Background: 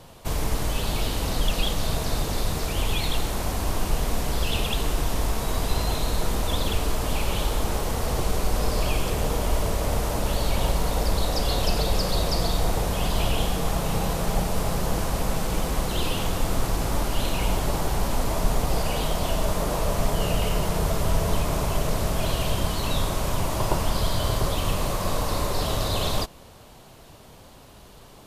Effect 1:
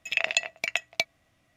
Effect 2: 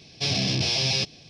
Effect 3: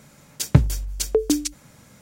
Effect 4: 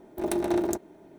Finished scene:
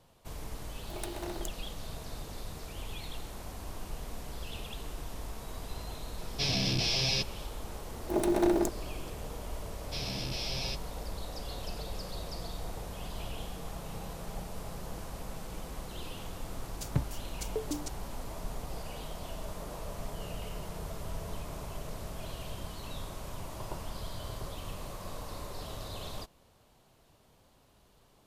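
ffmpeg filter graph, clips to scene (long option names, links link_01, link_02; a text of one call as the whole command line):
ffmpeg -i bed.wav -i cue0.wav -i cue1.wav -i cue2.wav -i cue3.wav -filter_complex "[4:a]asplit=2[link_01][link_02];[2:a]asplit=2[link_03][link_04];[0:a]volume=-16dB[link_05];[link_01]highpass=frequency=1000:poles=1[link_06];[link_02]alimiter=level_in=15.5dB:limit=-1dB:release=50:level=0:latency=1[link_07];[link_06]atrim=end=1.18,asetpts=PTS-STARTPTS,volume=-7dB,afade=type=in:duration=0.004:curve=hsin,afade=type=out:start_time=1.176:duration=0.004:curve=hsin,adelay=720[link_08];[link_03]atrim=end=1.29,asetpts=PTS-STARTPTS,volume=-5.5dB,afade=type=in:duration=0.004:curve=hsin,afade=type=out:start_time=1.286:duration=0.004:curve=hsin,adelay=272538S[link_09];[link_07]atrim=end=1.18,asetpts=PTS-STARTPTS,volume=-15.5dB,afade=type=in:duration=0.004:curve=hsin,afade=type=out:start_time=1.176:duration=0.004:curve=hsin,adelay=7920[link_10];[link_04]atrim=end=1.29,asetpts=PTS-STARTPTS,volume=-13dB,afade=type=in:duration=0.004:curve=hsin,afade=type=out:start_time=1.286:duration=0.004:curve=hsin,adelay=9710[link_11];[3:a]atrim=end=2.01,asetpts=PTS-STARTPTS,volume=-16dB,afade=type=in:duration=0.004:curve=hsin,afade=type=out:start_time=2.006:duration=0.004:curve=hsin,adelay=16410[link_12];[link_05][link_08][link_09][link_10][link_11][link_12]amix=inputs=6:normalize=0" out.wav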